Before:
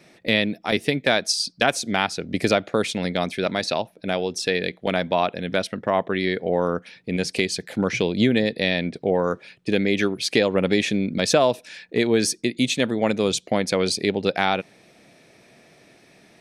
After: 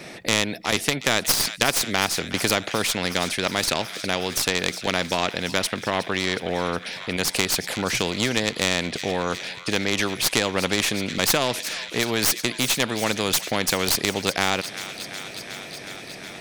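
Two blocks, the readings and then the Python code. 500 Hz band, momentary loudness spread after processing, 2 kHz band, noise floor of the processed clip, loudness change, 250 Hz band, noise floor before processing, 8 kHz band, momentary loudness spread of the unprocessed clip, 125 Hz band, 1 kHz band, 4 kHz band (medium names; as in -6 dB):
-5.0 dB, 8 LU, +1.5 dB, -39 dBFS, -0.5 dB, -4.5 dB, -55 dBFS, +6.5 dB, 6 LU, -2.0 dB, -0.5 dB, +3.5 dB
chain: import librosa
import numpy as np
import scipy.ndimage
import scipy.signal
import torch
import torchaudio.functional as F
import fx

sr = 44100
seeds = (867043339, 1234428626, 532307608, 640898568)

y = fx.tracing_dist(x, sr, depth_ms=0.042)
y = fx.echo_wet_highpass(y, sr, ms=365, feedback_pct=75, hz=1900.0, wet_db=-19.5)
y = fx.spectral_comp(y, sr, ratio=2.0)
y = y * librosa.db_to_amplitude(1.5)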